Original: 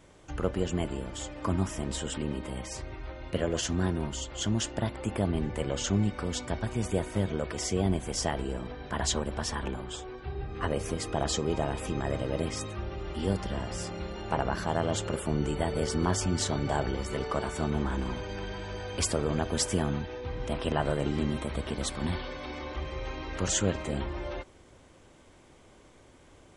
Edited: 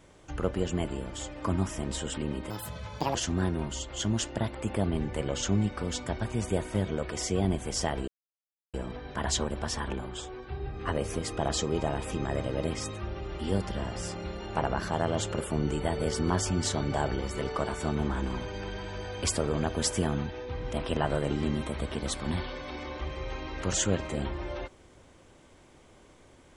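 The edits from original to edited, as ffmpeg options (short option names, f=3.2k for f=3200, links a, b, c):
-filter_complex "[0:a]asplit=4[a][b][c][d];[a]atrim=end=2.504[e];[b]atrim=start=2.5:end=3.56,asetpts=PTS-STARTPTS,asetrate=72324,aresample=44100[f];[c]atrim=start=3.556:end=8.49,asetpts=PTS-STARTPTS,afade=t=out:st=4.93:d=0.004:c=hsin,apad=pad_dur=0.66[g];[d]atrim=start=8.49,asetpts=PTS-STARTPTS,afade=t=in:d=0.004:c=hsin[h];[e][f]acrossfade=d=0.004:c1=hsin:c2=hsin[i];[g][h]concat=n=2:v=0:a=1[j];[i][j]acrossfade=d=0.004:c1=hsin:c2=hsin"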